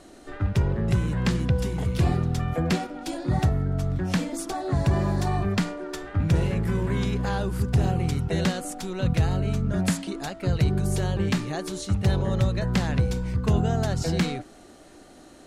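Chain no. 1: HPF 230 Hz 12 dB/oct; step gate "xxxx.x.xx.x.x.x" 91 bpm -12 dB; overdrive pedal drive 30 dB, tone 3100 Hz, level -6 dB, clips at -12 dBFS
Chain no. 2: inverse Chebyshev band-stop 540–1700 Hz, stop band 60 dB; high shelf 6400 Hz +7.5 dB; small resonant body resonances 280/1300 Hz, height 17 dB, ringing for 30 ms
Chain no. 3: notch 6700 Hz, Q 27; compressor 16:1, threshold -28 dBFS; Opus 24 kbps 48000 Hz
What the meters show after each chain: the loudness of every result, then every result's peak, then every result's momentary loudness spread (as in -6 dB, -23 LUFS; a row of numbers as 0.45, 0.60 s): -22.0, -22.5, -33.5 LUFS; -13.5, -6.0, -16.0 dBFS; 4, 7, 2 LU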